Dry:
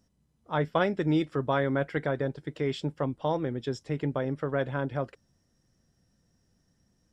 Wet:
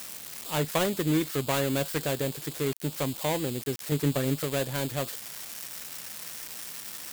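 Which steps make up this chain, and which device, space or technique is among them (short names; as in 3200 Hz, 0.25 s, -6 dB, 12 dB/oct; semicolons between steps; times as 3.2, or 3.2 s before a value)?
3.91–4.44 comb 7.1 ms, depth 74%; budget class-D amplifier (switching dead time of 0.24 ms; switching spikes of -19 dBFS)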